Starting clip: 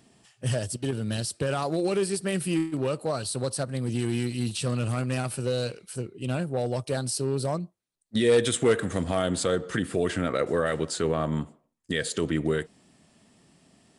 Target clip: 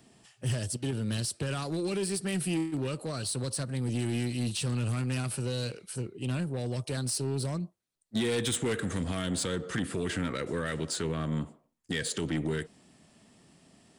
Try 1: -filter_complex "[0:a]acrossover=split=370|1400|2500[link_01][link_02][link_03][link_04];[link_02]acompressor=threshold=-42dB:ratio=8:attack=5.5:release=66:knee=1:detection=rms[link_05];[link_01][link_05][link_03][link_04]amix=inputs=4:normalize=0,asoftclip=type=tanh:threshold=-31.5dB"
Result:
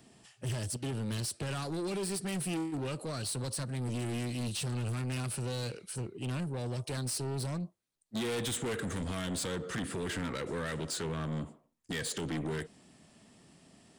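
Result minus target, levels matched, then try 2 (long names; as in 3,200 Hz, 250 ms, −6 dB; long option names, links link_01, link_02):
soft clipping: distortion +8 dB
-filter_complex "[0:a]acrossover=split=370|1400|2500[link_01][link_02][link_03][link_04];[link_02]acompressor=threshold=-42dB:ratio=8:attack=5.5:release=66:knee=1:detection=rms[link_05];[link_01][link_05][link_03][link_04]amix=inputs=4:normalize=0,asoftclip=type=tanh:threshold=-23.5dB"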